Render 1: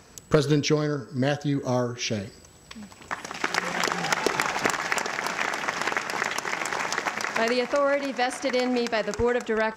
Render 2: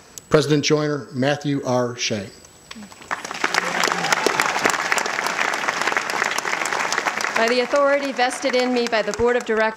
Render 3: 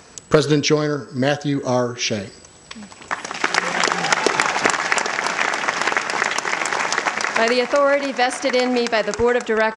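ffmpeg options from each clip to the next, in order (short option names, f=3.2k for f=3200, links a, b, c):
-af "lowshelf=f=190:g=-7.5,volume=6.5dB"
-af "aresample=22050,aresample=44100,volume=1dB"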